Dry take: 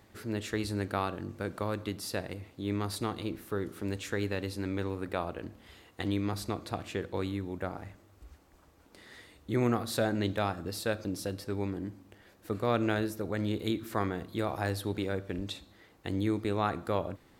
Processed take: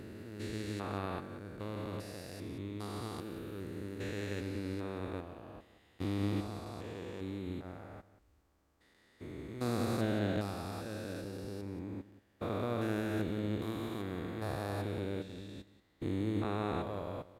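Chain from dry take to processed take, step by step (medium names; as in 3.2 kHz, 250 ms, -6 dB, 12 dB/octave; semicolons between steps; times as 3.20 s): spectrogram pixelated in time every 400 ms; delay 180 ms -11 dB; upward expansion 1.5:1, over -52 dBFS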